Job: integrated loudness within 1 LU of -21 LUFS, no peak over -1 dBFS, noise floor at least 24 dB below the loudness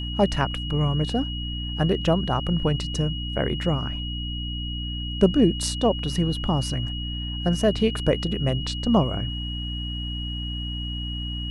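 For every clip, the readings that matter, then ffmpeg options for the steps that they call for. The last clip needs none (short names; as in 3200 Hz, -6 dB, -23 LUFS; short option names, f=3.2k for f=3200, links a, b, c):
hum 60 Hz; harmonics up to 300 Hz; hum level -29 dBFS; steady tone 2900 Hz; tone level -33 dBFS; loudness -25.0 LUFS; peak -5.5 dBFS; loudness target -21.0 LUFS
-> -af "bandreject=f=60:t=h:w=6,bandreject=f=120:t=h:w=6,bandreject=f=180:t=h:w=6,bandreject=f=240:t=h:w=6,bandreject=f=300:t=h:w=6"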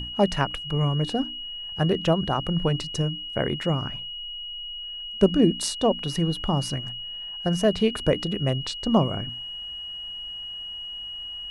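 hum none; steady tone 2900 Hz; tone level -33 dBFS
-> -af "bandreject=f=2.9k:w=30"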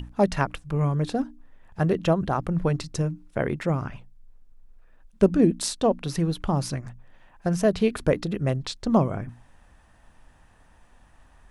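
steady tone none; loudness -25.5 LUFS; peak -6.5 dBFS; loudness target -21.0 LUFS
-> -af "volume=4.5dB"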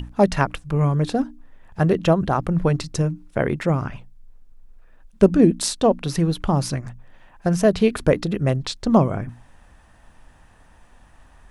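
loudness -21.0 LUFS; peak -2.0 dBFS; noise floor -52 dBFS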